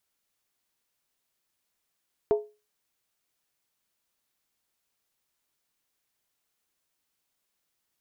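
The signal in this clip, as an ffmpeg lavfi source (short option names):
-f lavfi -i "aevalsrc='0.158*pow(10,-3*t/0.29)*sin(2*PI*421*t)+0.0531*pow(10,-3*t/0.23)*sin(2*PI*671.1*t)+0.0178*pow(10,-3*t/0.198)*sin(2*PI*899.3*t)+0.00596*pow(10,-3*t/0.191)*sin(2*PI*966.6*t)+0.002*pow(10,-3*t/0.178)*sin(2*PI*1116.9*t)':d=0.63:s=44100"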